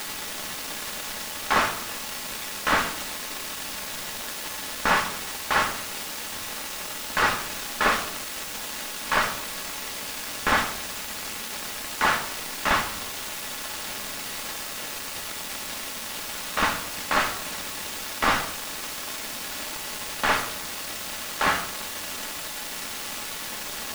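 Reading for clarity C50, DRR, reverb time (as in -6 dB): 10.0 dB, 4.0 dB, 0.75 s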